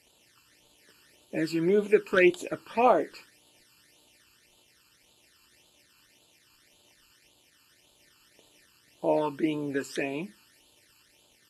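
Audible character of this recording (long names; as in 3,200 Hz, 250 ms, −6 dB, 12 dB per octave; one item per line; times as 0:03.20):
a quantiser's noise floor 10 bits, dither none
phaser sweep stages 12, 1.8 Hz, lowest notch 620–1,900 Hz
Ogg Vorbis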